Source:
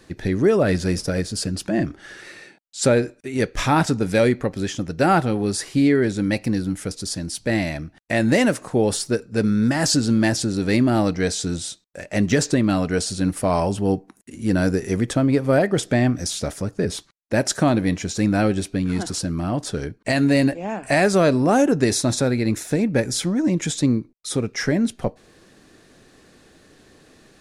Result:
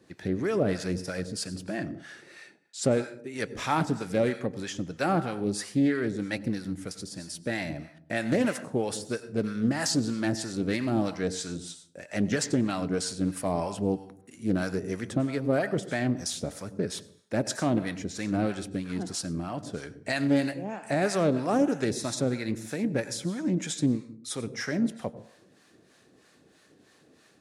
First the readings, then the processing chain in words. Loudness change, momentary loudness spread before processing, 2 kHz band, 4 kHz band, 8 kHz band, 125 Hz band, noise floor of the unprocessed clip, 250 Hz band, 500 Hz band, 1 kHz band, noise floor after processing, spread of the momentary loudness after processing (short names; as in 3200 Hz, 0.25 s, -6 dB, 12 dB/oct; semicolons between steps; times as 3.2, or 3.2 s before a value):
-8.5 dB, 9 LU, -8.5 dB, -8.5 dB, -8.5 dB, -9.5 dB, -55 dBFS, -8.0 dB, -8.5 dB, -8.5 dB, -61 dBFS, 11 LU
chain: HPF 110 Hz; plate-style reverb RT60 0.59 s, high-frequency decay 0.75×, pre-delay 80 ms, DRR 13 dB; harmonic tremolo 3.1 Hz, depth 70%, crossover 660 Hz; Doppler distortion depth 0.18 ms; gain -5 dB